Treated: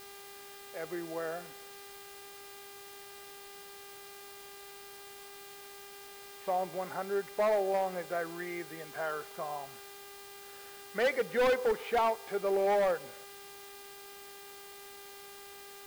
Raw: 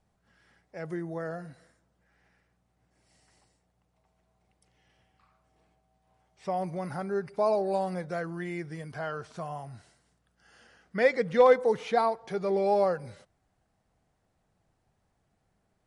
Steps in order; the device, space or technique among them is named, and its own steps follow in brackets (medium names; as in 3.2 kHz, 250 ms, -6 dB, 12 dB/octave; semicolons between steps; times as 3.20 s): aircraft radio (band-pass 360–2700 Hz; hard clipper -24 dBFS, distortion -8 dB; mains buzz 400 Hz, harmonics 13, -52 dBFS -4 dB/octave; white noise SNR 17 dB)